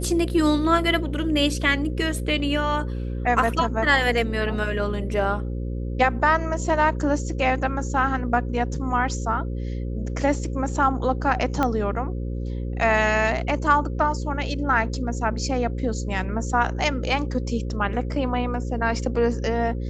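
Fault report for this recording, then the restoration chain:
mains buzz 60 Hz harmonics 9 −28 dBFS
0:11.63: click −10 dBFS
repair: click removal
hum removal 60 Hz, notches 9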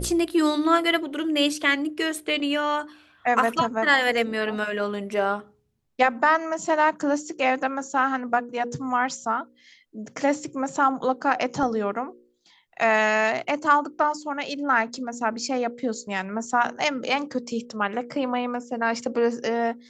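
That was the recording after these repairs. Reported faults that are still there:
0:11.63: click

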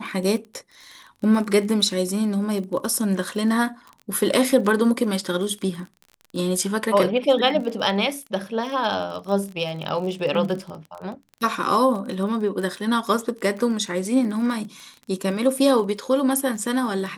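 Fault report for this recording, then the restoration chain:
surface crackle 30 per second −31 dBFS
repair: click removal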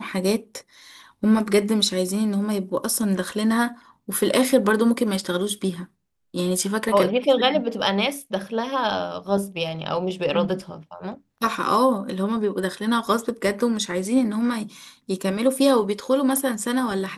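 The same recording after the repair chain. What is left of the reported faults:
none of them is left

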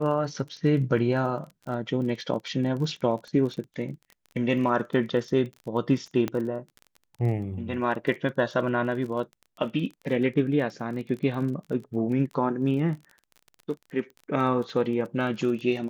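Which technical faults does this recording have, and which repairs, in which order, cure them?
surface crackle 23 per second −35 dBFS
0:06.28: click −15 dBFS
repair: click removal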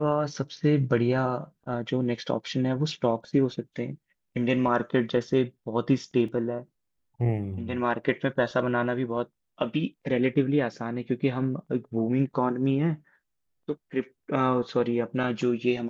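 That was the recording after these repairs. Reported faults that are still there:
0:06.28: click

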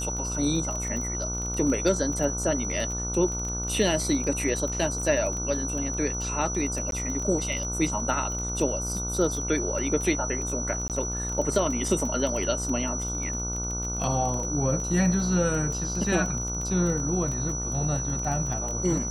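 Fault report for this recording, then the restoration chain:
mains buzz 60 Hz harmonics 25 −33 dBFS
surface crackle 23 per second −30 dBFS
whistle 5,900 Hz −31 dBFS
0:06.91–0:06.92: drop-out 12 ms
0:10.88–0:10.90: drop-out 18 ms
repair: click removal
hum removal 60 Hz, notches 25
notch filter 5,900 Hz, Q 30
repair the gap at 0:06.91, 12 ms
repair the gap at 0:10.88, 18 ms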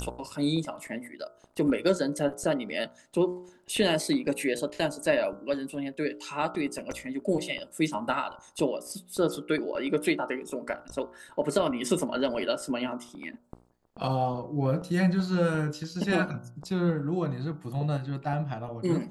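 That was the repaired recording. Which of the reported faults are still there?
none of them is left

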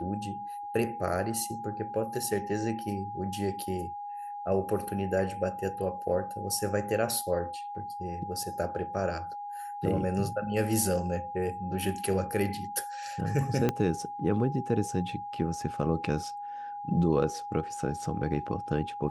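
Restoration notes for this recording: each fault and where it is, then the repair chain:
whistle 820 Hz −36 dBFS
0:13.69: click −13 dBFS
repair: click removal
notch filter 820 Hz, Q 30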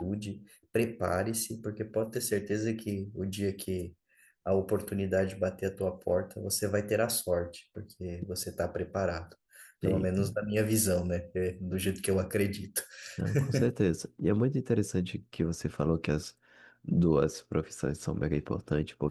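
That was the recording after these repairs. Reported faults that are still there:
0:13.69: click

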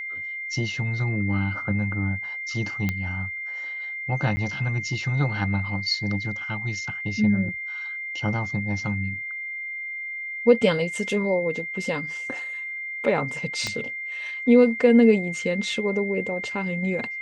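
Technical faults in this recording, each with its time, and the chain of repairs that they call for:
whistle 2,100 Hz −30 dBFS
0:02.89: click −12 dBFS
0:04.36–0:04.37: drop-out 10 ms
0:13.67: click −14 dBFS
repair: click removal
notch filter 2,100 Hz, Q 30
repair the gap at 0:04.36, 10 ms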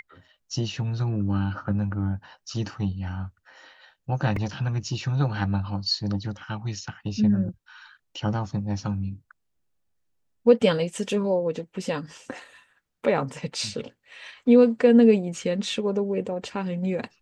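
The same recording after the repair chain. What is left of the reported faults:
0:13.67: click

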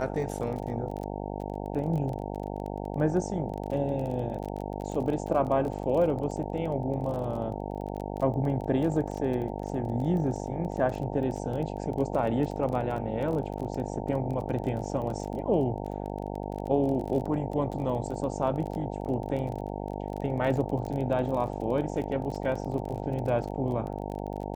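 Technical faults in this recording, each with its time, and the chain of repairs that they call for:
mains buzz 50 Hz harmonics 18 −35 dBFS
surface crackle 25 per second −34 dBFS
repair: click removal
hum removal 50 Hz, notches 18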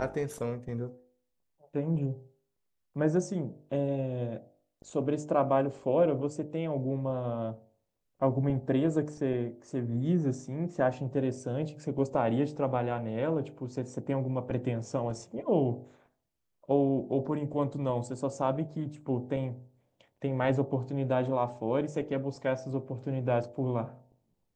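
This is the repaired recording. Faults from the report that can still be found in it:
none of them is left

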